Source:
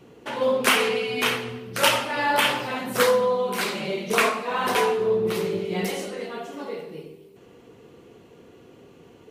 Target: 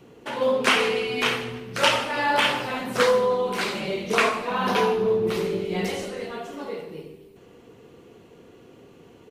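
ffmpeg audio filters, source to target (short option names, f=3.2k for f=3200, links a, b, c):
-filter_complex "[0:a]acrossover=split=7700[a][b];[b]acompressor=threshold=-48dB:ratio=4:attack=1:release=60[c];[a][c]amix=inputs=2:normalize=0,asettb=1/sr,asplit=3[d][e][f];[d]atrim=end=4.494[g];[e]atrim=start=4.49:end=5.08,asetpts=PTS-STARTPTS,afade=t=in:d=0.004:c=qsin,afade=t=out:st=0.586:d=0.004:c=qsin,equalizer=f=200:t=o:w=0.33:g=10,equalizer=f=2k:t=o:w=0.33:g=-5,equalizer=f=8k:t=o:w=0.33:g=-11[h];[f]atrim=start=5.076[i];[g][h]acrossfade=d=0.004:c1=hsin:c2=qsin[j];[j][i]acrossfade=d=0.004:c1=qsin:c2=hsin,asplit=2[k][l];[l]asplit=4[m][n][o][p];[m]adelay=154,afreqshift=-93,volume=-20dB[q];[n]adelay=308,afreqshift=-186,volume=-26.4dB[r];[o]adelay=462,afreqshift=-279,volume=-32.8dB[s];[p]adelay=616,afreqshift=-372,volume=-39.1dB[t];[q][r][s][t]amix=inputs=4:normalize=0[u];[k][u]amix=inputs=2:normalize=0"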